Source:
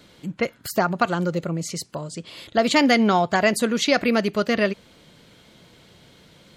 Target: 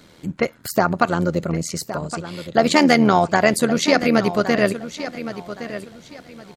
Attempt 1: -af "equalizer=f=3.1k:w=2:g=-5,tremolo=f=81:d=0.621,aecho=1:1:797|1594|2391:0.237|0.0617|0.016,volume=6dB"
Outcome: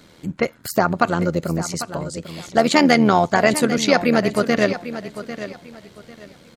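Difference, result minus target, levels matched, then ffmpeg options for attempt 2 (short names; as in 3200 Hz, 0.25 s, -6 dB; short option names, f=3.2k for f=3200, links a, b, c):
echo 0.319 s early
-af "equalizer=f=3.1k:w=2:g=-5,tremolo=f=81:d=0.621,aecho=1:1:1116|2232|3348:0.237|0.0617|0.016,volume=6dB"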